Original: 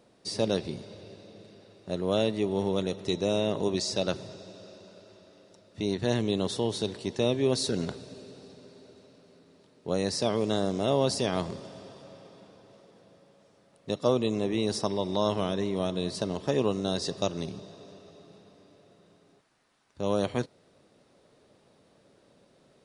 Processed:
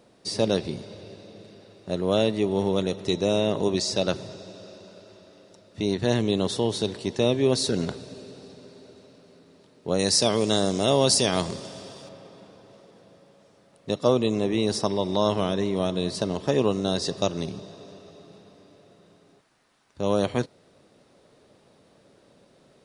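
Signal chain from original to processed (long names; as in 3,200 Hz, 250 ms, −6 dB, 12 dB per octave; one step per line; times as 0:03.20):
0:09.99–0:12.09: high-shelf EQ 3,700 Hz +11.5 dB
level +4 dB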